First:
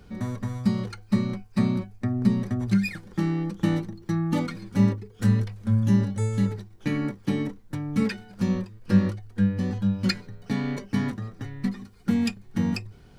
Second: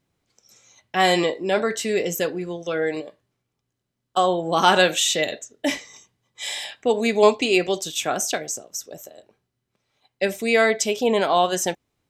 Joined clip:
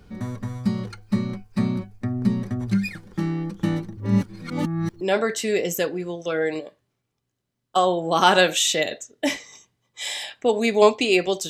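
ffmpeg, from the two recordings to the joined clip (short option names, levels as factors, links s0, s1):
-filter_complex "[0:a]apad=whole_dur=11.49,atrim=end=11.49,asplit=2[s0][s1];[s0]atrim=end=3.972[s2];[s1]atrim=start=3.968:end=5.012,asetpts=PTS-STARTPTS,areverse[s3];[1:a]atrim=start=1.418:end=7.9[s4];[s2][s3]acrossfade=d=0.004:c1=hsin:c2=hsin[s5];[s5][s4]acrossfade=d=0.004:c1=hsin:c2=hsin"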